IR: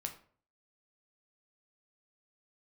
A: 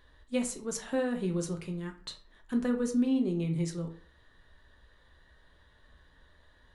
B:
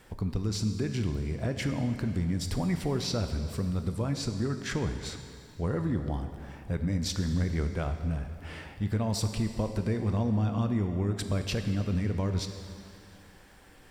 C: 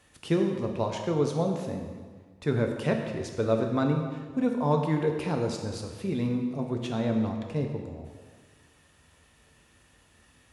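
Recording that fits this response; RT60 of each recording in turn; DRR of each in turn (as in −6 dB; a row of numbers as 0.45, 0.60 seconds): A; 0.50, 2.6, 1.6 seconds; 4.0, 6.5, 2.5 decibels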